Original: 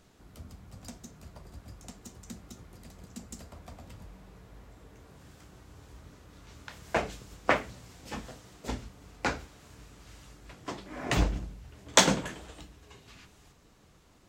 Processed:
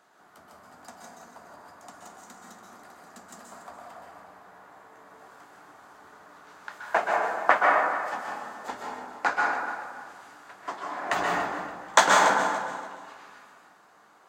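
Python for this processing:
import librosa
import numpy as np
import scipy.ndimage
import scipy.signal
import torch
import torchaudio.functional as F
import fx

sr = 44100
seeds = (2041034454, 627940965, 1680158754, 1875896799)

p1 = scipy.signal.sosfilt(scipy.signal.butter(2, 320.0, 'highpass', fs=sr, output='sos'), x)
p2 = fx.band_shelf(p1, sr, hz=1100.0, db=10.5, octaves=1.7)
p3 = fx.notch(p2, sr, hz=5500.0, q=23.0)
p4 = p3 + fx.echo_feedback(p3, sr, ms=286, feedback_pct=28, wet_db=-13.0, dry=0)
p5 = fx.rev_plate(p4, sr, seeds[0], rt60_s=1.5, hf_ratio=0.45, predelay_ms=115, drr_db=-2.0)
y = p5 * librosa.db_to_amplitude(-3.5)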